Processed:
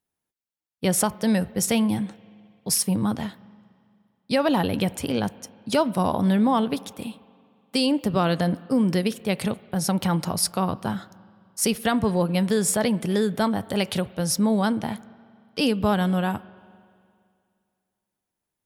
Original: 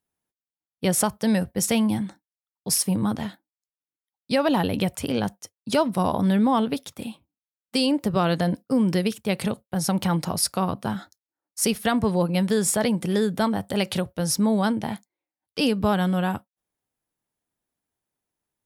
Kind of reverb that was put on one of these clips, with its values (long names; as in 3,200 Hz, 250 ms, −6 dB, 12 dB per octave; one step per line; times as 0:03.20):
spring reverb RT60 2.3 s, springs 43/58 ms, chirp 70 ms, DRR 19.5 dB